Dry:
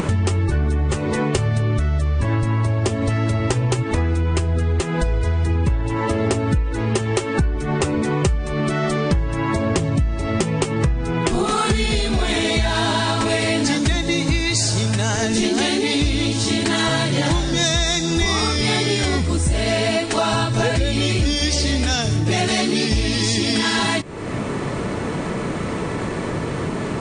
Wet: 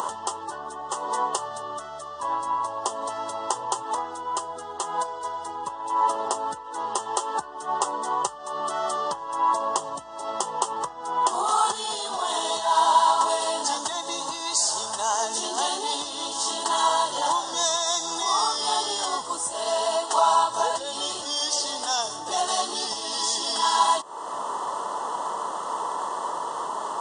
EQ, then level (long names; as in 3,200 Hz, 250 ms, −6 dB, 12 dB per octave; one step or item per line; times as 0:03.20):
high-pass with resonance 1,000 Hz, resonance Q 3.8
Butterworth band-reject 2,300 Hz, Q 0.52
flat-topped bell 2,500 Hz +15.5 dB 1 octave
0.0 dB